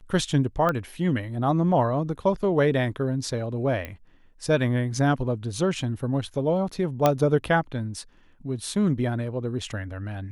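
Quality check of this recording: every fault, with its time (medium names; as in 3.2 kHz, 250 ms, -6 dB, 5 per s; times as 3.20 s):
0.69 s: pop -13 dBFS
3.85 s: pop -19 dBFS
7.06 s: pop -6 dBFS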